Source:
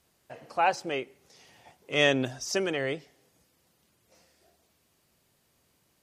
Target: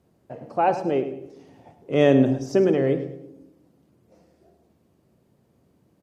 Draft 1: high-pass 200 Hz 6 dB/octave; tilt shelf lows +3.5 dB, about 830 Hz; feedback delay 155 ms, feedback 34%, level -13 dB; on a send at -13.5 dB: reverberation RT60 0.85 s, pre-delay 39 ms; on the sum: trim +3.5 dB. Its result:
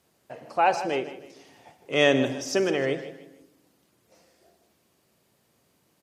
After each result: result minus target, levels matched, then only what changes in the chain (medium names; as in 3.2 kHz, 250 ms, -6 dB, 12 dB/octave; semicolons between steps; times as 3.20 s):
echo 50 ms late; 1 kHz band +3.0 dB
change: feedback delay 105 ms, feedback 34%, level -13 dB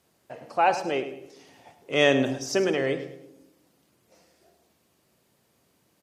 1 kHz band +3.0 dB
change: tilt shelf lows +13.5 dB, about 830 Hz